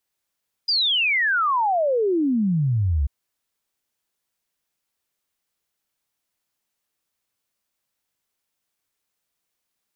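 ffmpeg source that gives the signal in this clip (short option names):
-f lavfi -i "aevalsrc='0.133*clip(min(t,2.39-t)/0.01,0,1)*sin(2*PI*5000*2.39/log(65/5000)*(exp(log(65/5000)*t/2.39)-1))':d=2.39:s=44100"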